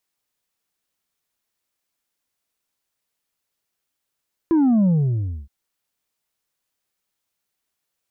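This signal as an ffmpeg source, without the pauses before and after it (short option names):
-f lavfi -i "aevalsrc='0.2*clip((0.97-t)/0.62,0,1)*tanh(1.5*sin(2*PI*340*0.97/log(65/340)*(exp(log(65/340)*t/0.97)-1)))/tanh(1.5)':d=0.97:s=44100"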